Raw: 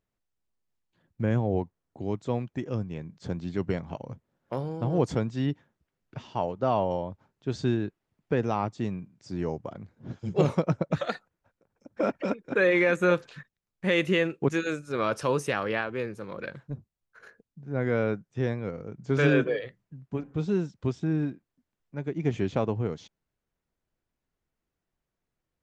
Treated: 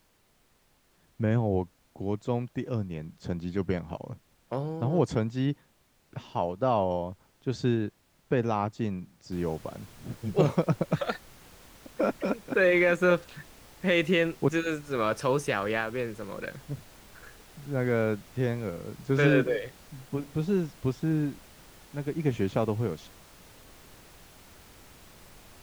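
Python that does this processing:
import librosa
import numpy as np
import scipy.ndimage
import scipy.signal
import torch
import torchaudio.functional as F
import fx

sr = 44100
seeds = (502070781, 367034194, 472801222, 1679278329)

y = fx.noise_floor_step(x, sr, seeds[0], at_s=9.32, before_db=-66, after_db=-52, tilt_db=3.0)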